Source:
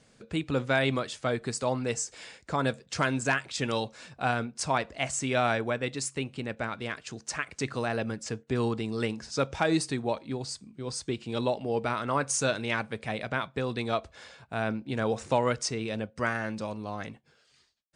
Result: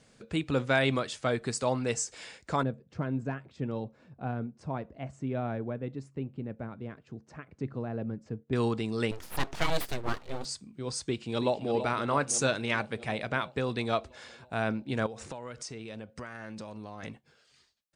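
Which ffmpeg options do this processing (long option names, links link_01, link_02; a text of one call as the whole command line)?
ffmpeg -i in.wav -filter_complex "[0:a]asettb=1/sr,asplit=3[link_01][link_02][link_03];[link_01]atrim=end=2.634[link_04];[link_02]atrim=start=2.63:end=8.53,asetpts=PTS-STARTPTS,afade=type=in:duration=0.004:curve=qsin,afade=type=out:start_time=5.896:duration=0.004:curve=qsin,bandpass=frequency=150:width_type=q:width=0.58[link_05];[link_03]atrim=start=8.526[link_06];[link_04][link_05]acrossfade=duration=0.004:curve1=hsin:curve2=qsin[link_07];[link_07][link_06]acrossfade=duration=0.004:curve1=qsin:curve2=hsin,asettb=1/sr,asplit=3[link_08][link_09][link_10];[link_08]atrim=end=9.114[link_11];[link_09]atrim=start=9.11:end=10.45,asetpts=PTS-STARTPTS,afade=type=in:duration=0.004:curve=qsin,afade=type=out:start_time=1.336:duration=0.004:curve=qsin,aeval=exprs='abs(val(0))':channel_layout=same[link_12];[link_10]atrim=start=10.446[link_13];[link_11][link_12]acrossfade=duration=0.004:curve1=hsin:curve2=qsin[link_14];[link_14][link_13]acrossfade=duration=0.004:curve1=qsin:curve2=hsin,asplit=2[link_15][link_16];[link_16]afade=type=in:start_time=11.06:duration=0.01,afade=type=out:start_time=11.72:duration=0.01,aecho=0:1:330|660|990|1320|1650|1980|2310|2640|2970|3300:0.316228|0.221359|0.154952|0.108466|0.0759263|0.0531484|0.0372039|0.0260427|0.0182299|0.0127609[link_17];[link_15][link_17]amix=inputs=2:normalize=0,asettb=1/sr,asplit=3[link_18][link_19][link_20];[link_18]atrim=end=15.064[link_21];[link_19]atrim=start=15.06:end=17.03,asetpts=PTS-STARTPTS,afade=type=in:duration=0.004:curve=qsin,afade=type=out:start_time=1.966:duration=0.004:curve=qsin,acompressor=threshold=-37dB:ratio=8:attack=3.2:release=140:knee=1:detection=peak[link_22];[link_20]atrim=start=17.026[link_23];[link_21][link_22]acrossfade=duration=0.004:curve1=hsin:curve2=qsin[link_24];[link_24][link_23]acrossfade=duration=0.004:curve1=qsin:curve2=hsin" out.wav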